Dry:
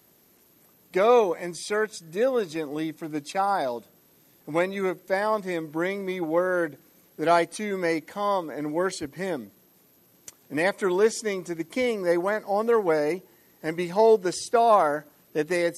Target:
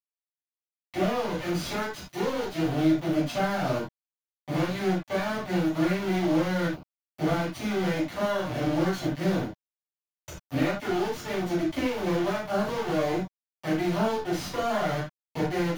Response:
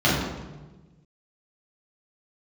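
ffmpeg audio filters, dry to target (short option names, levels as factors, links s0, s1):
-filter_complex "[0:a]lowshelf=f=170:g=-9.5,acompressor=threshold=0.0251:ratio=8,acrusher=bits=4:dc=4:mix=0:aa=0.000001[s0];[1:a]atrim=start_sample=2205,atrim=end_sample=4410[s1];[s0][s1]afir=irnorm=-1:irlink=0,volume=0.398"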